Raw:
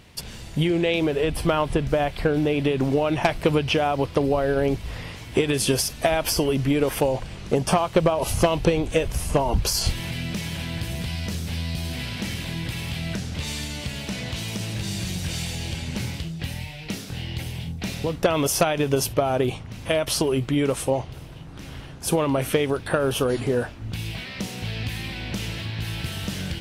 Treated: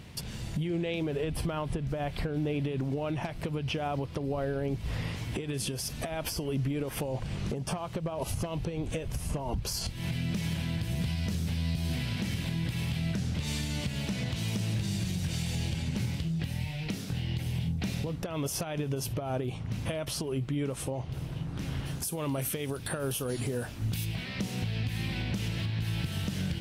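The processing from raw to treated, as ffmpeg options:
ffmpeg -i in.wav -filter_complex "[0:a]asplit=3[link_01][link_02][link_03];[link_01]afade=type=out:start_time=21.85:duration=0.02[link_04];[link_02]aemphasis=mode=production:type=75kf,afade=type=in:start_time=21.85:duration=0.02,afade=type=out:start_time=24.04:duration=0.02[link_05];[link_03]afade=type=in:start_time=24.04:duration=0.02[link_06];[link_04][link_05][link_06]amix=inputs=3:normalize=0,equalizer=frequency=140:width_type=o:width=1.8:gain=7.5,acompressor=threshold=-22dB:ratio=6,alimiter=limit=-22dB:level=0:latency=1:release=415,volume=-1dB" out.wav

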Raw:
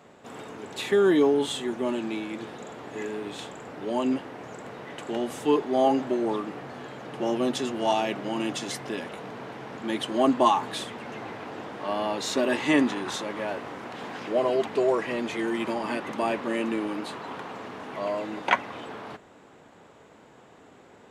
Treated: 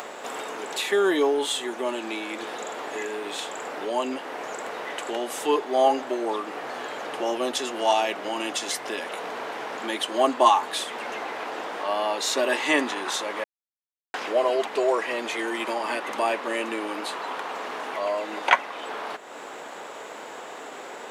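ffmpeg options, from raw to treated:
ffmpeg -i in.wav -filter_complex "[0:a]asplit=3[link_01][link_02][link_03];[link_01]atrim=end=13.44,asetpts=PTS-STARTPTS,afade=type=out:start_time=13.436:duration=0.004:curve=hsin[link_04];[link_02]atrim=start=13.44:end=14.14,asetpts=PTS-STARTPTS,volume=0[link_05];[link_03]atrim=start=14.14,asetpts=PTS-STARTPTS,afade=type=in:duration=0.004:curve=hsin[link_06];[link_04][link_05][link_06]concat=n=3:v=0:a=1,highpass=490,highshelf=frequency=8900:gain=5.5,acompressor=mode=upward:threshold=-30dB:ratio=2.5,volume=4dB" out.wav

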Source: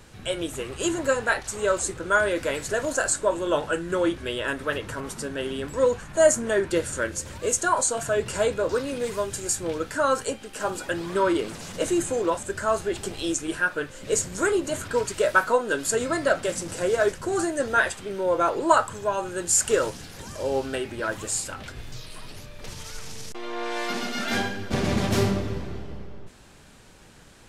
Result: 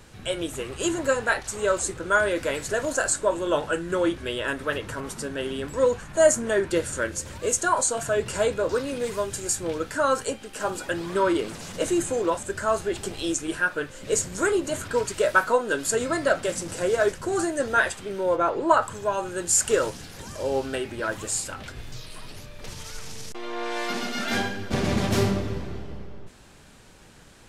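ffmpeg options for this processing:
ffmpeg -i in.wav -filter_complex "[0:a]asplit=3[link_01][link_02][link_03];[link_01]afade=type=out:start_time=18.35:duration=0.02[link_04];[link_02]lowpass=frequency=2600:poles=1,afade=type=in:start_time=18.35:duration=0.02,afade=type=out:start_time=18.81:duration=0.02[link_05];[link_03]afade=type=in:start_time=18.81:duration=0.02[link_06];[link_04][link_05][link_06]amix=inputs=3:normalize=0" out.wav

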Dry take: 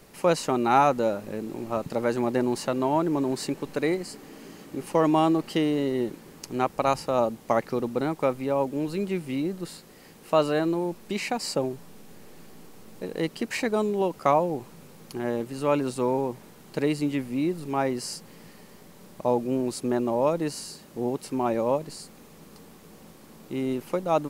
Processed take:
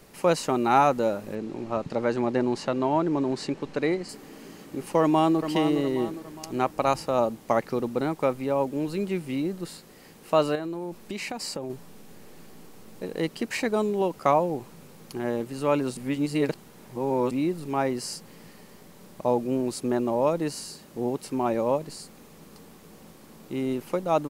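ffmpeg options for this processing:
ffmpeg -i in.wav -filter_complex "[0:a]asettb=1/sr,asplit=3[link_01][link_02][link_03];[link_01]atrim=end=1.354[link_04];[link_02]atrim=start=1.35:end=4.09,asetpts=PTS-STARTPTS,afade=type=in:duration=0.004:curve=qsin,afade=type=out:start_time=2.736:duration=0.004:curve=qsin,lowpass=5800[link_05];[link_03]atrim=start=4.086[link_06];[link_04][link_05]acrossfade=duration=0.004:curve1=hsin:curve2=qsin[link_07];[link_07][link_06]acrossfade=duration=0.004:curve1=qsin:curve2=hsin,asplit=2[link_08][link_09];[link_09]afade=type=in:start_time=5.01:duration=0.01,afade=type=out:start_time=5.41:duration=0.01,aecho=0:1:410|820|1230|1640|2050:0.398107|0.179148|0.0806167|0.0362775|0.0163249[link_10];[link_08][link_10]amix=inputs=2:normalize=0,asettb=1/sr,asplit=3[link_11][link_12][link_13];[link_11]atrim=end=10.554[link_14];[link_12]atrim=start=10.55:end=11.7,asetpts=PTS-STARTPTS,afade=type=in:duration=0.004:curve=qsin,afade=type=out:start_time=1.146:duration=0.004:curve=qsin,acompressor=threshold=-29dB:ratio=5:attack=3.2:release=140:knee=1:detection=peak[link_15];[link_13]atrim=start=11.696[link_16];[link_14][link_15]acrossfade=duration=0.004:curve1=hsin:curve2=qsin[link_17];[link_17][link_16]acrossfade=duration=0.004:curve1=qsin:curve2=hsin,asplit=3[link_18][link_19][link_20];[link_18]atrim=end=15.972[link_21];[link_19]atrim=start=15.968:end=17.312,asetpts=PTS-STARTPTS,areverse[link_22];[link_20]atrim=start=17.308[link_23];[link_21][link_22]acrossfade=duration=0.004:curve1=hsin:curve2=hsin[link_24];[link_24][link_23]acrossfade=duration=0.004:curve1=hsin:curve2=hsin" out.wav

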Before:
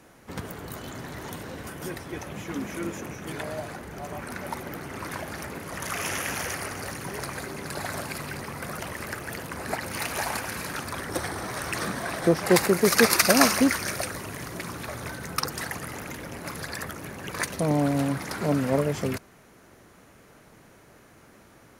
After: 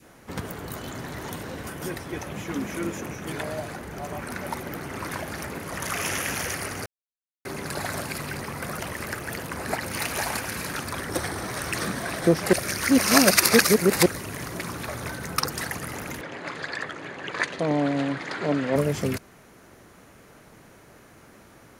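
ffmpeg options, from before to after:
ffmpeg -i in.wav -filter_complex "[0:a]asettb=1/sr,asplit=3[link_01][link_02][link_03];[link_01]atrim=end=16.214[link_04];[link_02]atrim=start=16.21:end=18.76,asetpts=PTS-STARTPTS,afade=type=in:duration=0.004:curve=qsin,afade=type=out:start_time=2.546:duration=0.004:curve=qsin,highpass=190,equalizer=frequency=210:width_type=q:width=4:gain=-8,equalizer=frequency=1800:width_type=q:width=4:gain=4,equalizer=frequency=3300:width_type=q:width=4:gain=3,equalizer=frequency=5600:width_type=q:width=4:gain=-10,lowpass=frequency=6300:width=0.5412,lowpass=frequency=6300:width=1.3066[link_05];[link_03]atrim=start=18.756[link_06];[link_04][link_05]acrossfade=duration=0.004:curve1=hsin:curve2=qsin[link_07];[link_07][link_06]acrossfade=duration=0.004:curve1=qsin:curve2=hsin,asplit=5[link_08][link_09][link_10][link_11][link_12];[link_08]atrim=end=6.86,asetpts=PTS-STARTPTS,afade=type=out:start_time=6.856:duration=0.004:curve=hsin[link_13];[link_09]atrim=start=6.86:end=7.45,asetpts=PTS-STARTPTS,volume=0[link_14];[link_10]atrim=start=7.45:end=12.532,asetpts=PTS-STARTPTS,afade=type=in:duration=0.004:curve=hsin[link_15];[link_11]atrim=start=12.528:end=14.062,asetpts=PTS-STARTPTS,areverse[link_16];[link_12]atrim=start=14.058[link_17];[link_13][link_14][link_15]concat=n=3:v=0:a=1[link_18];[link_18][link_16]acrossfade=duration=0.004:curve1=hsin:curve2=hsin[link_19];[link_19][link_17]acrossfade=duration=0.004:curve1=hsin:curve2=hsin,adynamicequalizer=threshold=0.0126:dfrequency=910:dqfactor=0.91:tfrequency=910:tqfactor=0.91:attack=5:release=100:ratio=0.375:range=2:mode=cutabove:tftype=bell,volume=2.5dB" out.wav

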